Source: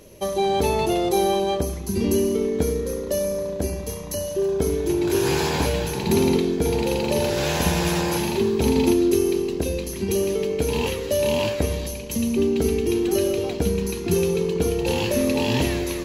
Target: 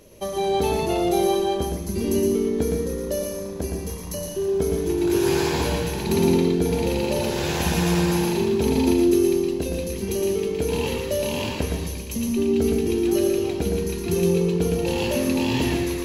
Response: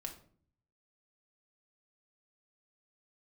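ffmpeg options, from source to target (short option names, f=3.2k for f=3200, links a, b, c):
-filter_complex "[0:a]asplit=2[a][b];[1:a]atrim=start_sample=2205,adelay=115[c];[b][c]afir=irnorm=-1:irlink=0,volume=-1dB[d];[a][d]amix=inputs=2:normalize=0,volume=-3dB"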